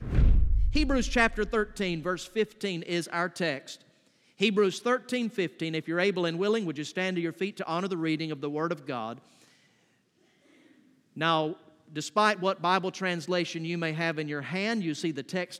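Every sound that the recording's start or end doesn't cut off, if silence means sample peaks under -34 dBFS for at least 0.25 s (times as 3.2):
4.4–9.13
11.17–11.53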